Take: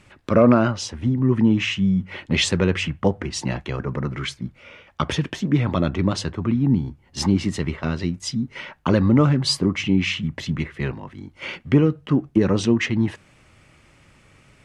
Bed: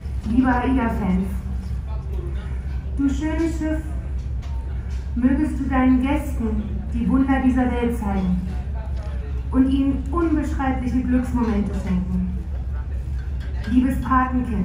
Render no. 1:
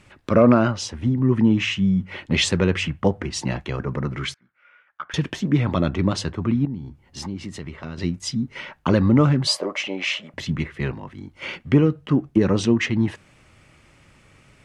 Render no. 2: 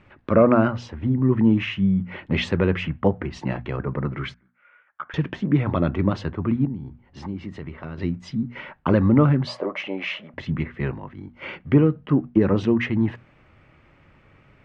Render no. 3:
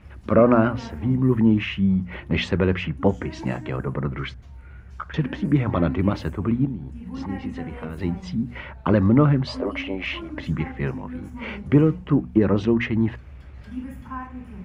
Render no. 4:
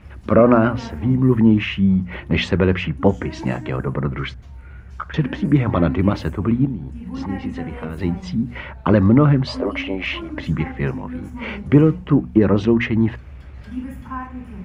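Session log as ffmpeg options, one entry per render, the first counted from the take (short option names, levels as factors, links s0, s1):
-filter_complex "[0:a]asettb=1/sr,asplit=3[s0][s1][s2];[s0]atrim=end=4.344[s3];[s1]atrim=start=4.34:end=5.14,asetpts=PTS-STARTPTS,afade=t=in:d=0.004:c=qsin,afade=t=out:st=0.796:d=0.004:c=qsin,bandpass=f=1500:t=q:w=5.2[s4];[s2]atrim=start=5.136[s5];[s3][s4]acrossfade=d=0.004:c1=hsin:c2=qsin[s6];[s6][s5]acrossfade=d=0.004:c1=qsin:c2=hsin,asettb=1/sr,asplit=3[s7][s8][s9];[s7]atrim=end=6.654[s10];[s8]atrim=start=6.65:end=7.98,asetpts=PTS-STARTPTS,afade=t=in:d=0.004:c=qsin,afade=t=out:st=1.326:d=0.004:c=qsin,acompressor=threshold=0.0158:ratio=2:attack=3.2:release=140:knee=1:detection=peak[s11];[s9]atrim=start=7.976[s12];[s10][s11]acrossfade=d=0.004:c1=hsin:c2=qsin[s13];[s13][s12]acrossfade=d=0.004:c1=qsin:c2=hsin,asettb=1/sr,asplit=3[s14][s15][s16];[s14]atrim=end=9.474[s17];[s15]atrim=start=9.47:end=10.34,asetpts=PTS-STARTPTS,afade=t=in:d=0.004:c=qsin,afade=t=out:st=0.866:d=0.004:c=qsin,highpass=f=590:t=q:w=6.2[s18];[s16]atrim=start=10.336[s19];[s17][s18]acrossfade=d=0.004:c1=hsin:c2=qsin[s20];[s20][s19]acrossfade=d=0.004:c1=qsin:c2=hsin"
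-af "lowpass=2200,bandreject=f=60:t=h:w=6,bandreject=f=120:t=h:w=6,bandreject=f=180:t=h:w=6,bandreject=f=240:t=h:w=6"
-filter_complex "[1:a]volume=0.168[s0];[0:a][s0]amix=inputs=2:normalize=0"
-af "volume=1.58,alimiter=limit=0.794:level=0:latency=1"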